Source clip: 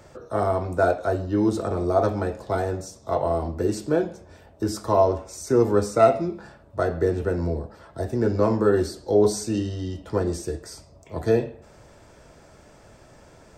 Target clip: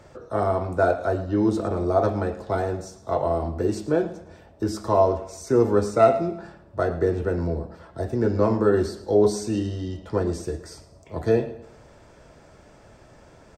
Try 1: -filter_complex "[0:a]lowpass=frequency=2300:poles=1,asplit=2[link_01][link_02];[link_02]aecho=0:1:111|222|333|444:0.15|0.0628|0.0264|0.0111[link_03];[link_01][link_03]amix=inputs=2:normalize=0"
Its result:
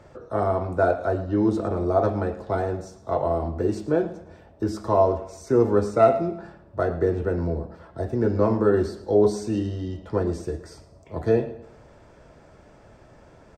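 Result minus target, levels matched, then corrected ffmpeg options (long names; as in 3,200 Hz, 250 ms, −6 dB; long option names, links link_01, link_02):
4,000 Hz band −4.5 dB
-filter_complex "[0:a]lowpass=frequency=5500:poles=1,asplit=2[link_01][link_02];[link_02]aecho=0:1:111|222|333|444:0.15|0.0628|0.0264|0.0111[link_03];[link_01][link_03]amix=inputs=2:normalize=0"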